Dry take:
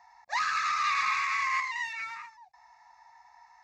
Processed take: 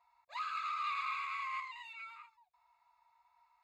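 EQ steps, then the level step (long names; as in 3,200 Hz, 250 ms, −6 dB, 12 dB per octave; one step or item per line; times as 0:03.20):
low-shelf EQ 410 Hz −4.5 dB
phaser with its sweep stopped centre 1,200 Hz, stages 8
−8.0 dB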